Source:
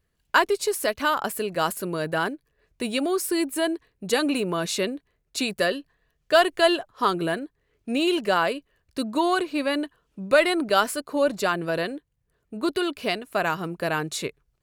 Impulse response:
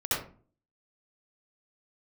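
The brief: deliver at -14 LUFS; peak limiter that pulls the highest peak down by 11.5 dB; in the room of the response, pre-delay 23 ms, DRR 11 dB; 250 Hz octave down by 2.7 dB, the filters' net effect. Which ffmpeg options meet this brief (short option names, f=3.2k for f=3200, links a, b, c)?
-filter_complex "[0:a]equalizer=f=250:t=o:g=-4,alimiter=limit=-15.5dB:level=0:latency=1,asplit=2[a][b];[1:a]atrim=start_sample=2205,adelay=23[c];[b][c]afir=irnorm=-1:irlink=0,volume=-20dB[d];[a][d]amix=inputs=2:normalize=0,volume=13.5dB"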